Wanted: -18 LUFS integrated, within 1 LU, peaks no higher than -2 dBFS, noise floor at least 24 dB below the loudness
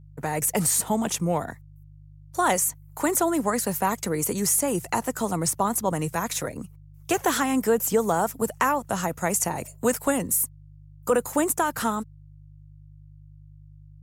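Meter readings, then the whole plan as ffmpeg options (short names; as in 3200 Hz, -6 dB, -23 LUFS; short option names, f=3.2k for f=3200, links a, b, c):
hum 50 Hz; harmonics up to 150 Hz; hum level -46 dBFS; loudness -25.0 LUFS; peak -10.5 dBFS; loudness target -18.0 LUFS
-> -af "bandreject=f=50:t=h:w=4,bandreject=f=100:t=h:w=4,bandreject=f=150:t=h:w=4"
-af "volume=7dB"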